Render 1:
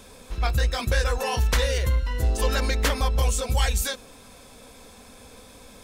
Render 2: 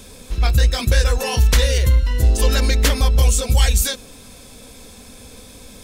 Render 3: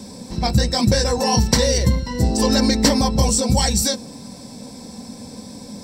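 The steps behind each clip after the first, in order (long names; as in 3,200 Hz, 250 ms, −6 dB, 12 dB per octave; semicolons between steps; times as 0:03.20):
parametric band 1,000 Hz −8 dB 2.3 octaves; level +8.5 dB
convolution reverb, pre-delay 3 ms, DRR 10 dB; level −2 dB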